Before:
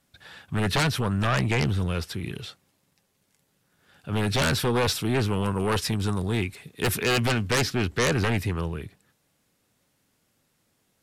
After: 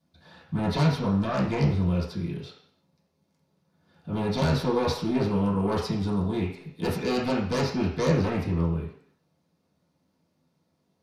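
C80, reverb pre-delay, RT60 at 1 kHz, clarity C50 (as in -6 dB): 9.0 dB, 3 ms, 0.55 s, 5.5 dB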